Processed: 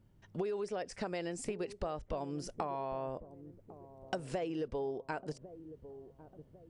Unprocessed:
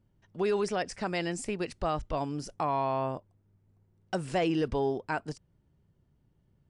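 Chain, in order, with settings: dynamic bell 490 Hz, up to +8 dB, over -44 dBFS, Q 1.5; compression 12:1, threshold -38 dBFS, peak gain reduction 19.5 dB; feedback echo behind a low-pass 1101 ms, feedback 41%, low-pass 520 Hz, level -12 dB; trim +3.5 dB

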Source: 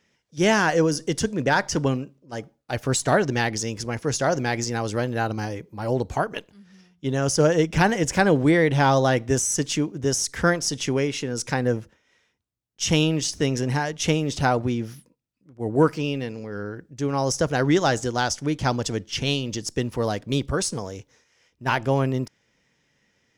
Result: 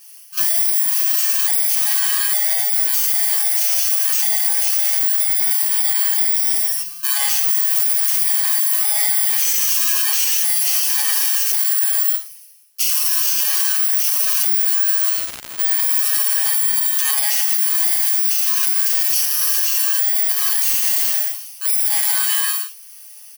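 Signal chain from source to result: bit-reversed sample order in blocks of 32 samples; comb 7.3 ms, depth 66%; overload inside the chain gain 14.5 dB; steep high-pass 690 Hz 96 dB/octave; tilt EQ +3.5 dB/octave; band-stop 930 Hz, Q 5.7; gated-style reverb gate 470 ms falling, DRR -4 dB; 14.42–16.66 s: crackle 190 per s -24 dBFS; compression, threshold -19 dBFS, peak gain reduction 18.5 dB; loudness maximiser +16.5 dB; trim -6.5 dB

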